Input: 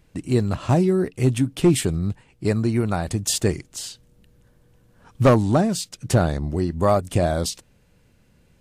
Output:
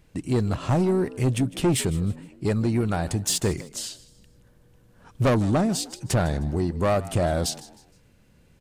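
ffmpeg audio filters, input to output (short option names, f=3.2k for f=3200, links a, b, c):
-filter_complex "[0:a]asoftclip=type=tanh:threshold=-16dB,asplit=4[a][b][c][d];[b]adelay=155,afreqshift=68,volume=-18.5dB[e];[c]adelay=310,afreqshift=136,volume=-27.6dB[f];[d]adelay=465,afreqshift=204,volume=-36.7dB[g];[a][e][f][g]amix=inputs=4:normalize=0"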